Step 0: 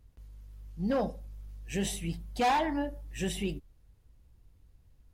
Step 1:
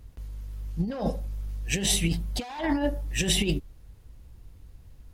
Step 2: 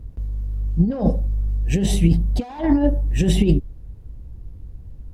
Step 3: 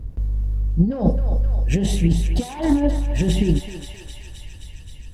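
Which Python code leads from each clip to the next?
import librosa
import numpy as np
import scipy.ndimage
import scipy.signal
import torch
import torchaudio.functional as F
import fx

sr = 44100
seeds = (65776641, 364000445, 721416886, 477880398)

y1 = fx.dynamic_eq(x, sr, hz=4200.0, q=0.89, threshold_db=-50.0, ratio=4.0, max_db=5)
y1 = fx.over_compress(y1, sr, threshold_db=-33.0, ratio=-0.5)
y1 = F.gain(torch.from_numpy(y1), 8.0).numpy()
y2 = fx.tilt_shelf(y1, sr, db=9.0, hz=800.0)
y2 = F.gain(torch.from_numpy(y2), 3.0).numpy()
y3 = fx.echo_thinned(y2, sr, ms=263, feedback_pct=79, hz=690.0, wet_db=-7.5)
y3 = fx.rider(y3, sr, range_db=4, speed_s=0.5)
y3 = fx.doppler_dist(y3, sr, depth_ms=0.12)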